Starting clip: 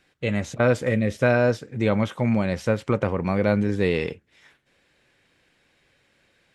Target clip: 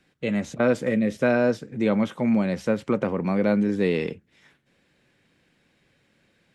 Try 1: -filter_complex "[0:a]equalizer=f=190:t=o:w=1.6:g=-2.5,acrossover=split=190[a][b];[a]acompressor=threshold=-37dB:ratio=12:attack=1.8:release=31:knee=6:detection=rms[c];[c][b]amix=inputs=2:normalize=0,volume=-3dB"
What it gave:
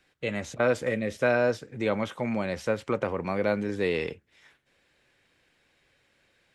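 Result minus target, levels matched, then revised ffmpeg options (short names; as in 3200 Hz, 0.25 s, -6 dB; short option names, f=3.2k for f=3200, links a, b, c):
250 Hz band -4.5 dB
-filter_complex "[0:a]equalizer=f=190:t=o:w=1.6:g=9,acrossover=split=190[a][b];[a]acompressor=threshold=-37dB:ratio=12:attack=1.8:release=31:knee=6:detection=rms[c];[c][b]amix=inputs=2:normalize=0,volume=-3dB"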